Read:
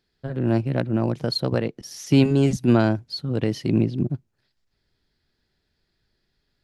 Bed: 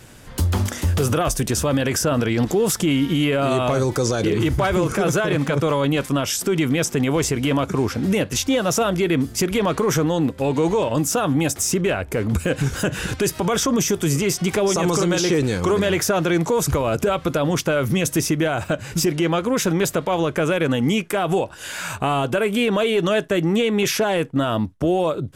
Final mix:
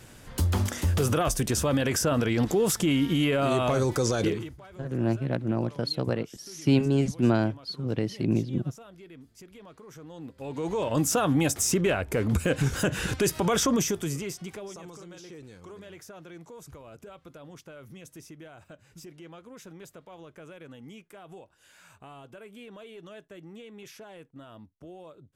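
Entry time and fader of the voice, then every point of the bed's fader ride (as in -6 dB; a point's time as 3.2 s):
4.55 s, -5.0 dB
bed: 4.28 s -5 dB
4.58 s -29 dB
9.9 s -29 dB
11 s -4 dB
13.7 s -4 dB
14.96 s -26.5 dB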